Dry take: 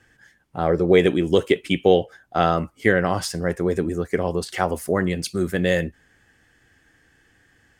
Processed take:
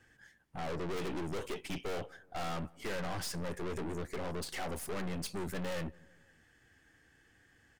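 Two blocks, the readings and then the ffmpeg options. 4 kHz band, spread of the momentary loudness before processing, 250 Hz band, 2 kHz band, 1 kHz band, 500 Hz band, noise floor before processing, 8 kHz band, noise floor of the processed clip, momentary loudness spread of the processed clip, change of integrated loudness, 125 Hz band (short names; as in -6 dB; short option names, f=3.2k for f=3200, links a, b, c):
-13.5 dB, 8 LU, -18.0 dB, -17.5 dB, -16.5 dB, -20.0 dB, -61 dBFS, -9.5 dB, -67 dBFS, 3 LU, -18.0 dB, -16.0 dB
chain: -filter_complex "[0:a]aeval=exprs='(tanh(44.7*val(0)+0.65)-tanh(0.65))/44.7':c=same,asplit=2[a][b];[b]adelay=177,lowpass=f=1.2k:p=1,volume=-24dB,asplit=2[c][d];[d]adelay=177,lowpass=f=1.2k:p=1,volume=0.54,asplit=2[e][f];[f]adelay=177,lowpass=f=1.2k:p=1,volume=0.54[g];[c][e][g]amix=inputs=3:normalize=0[h];[a][h]amix=inputs=2:normalize=0,volume=-3.5dB"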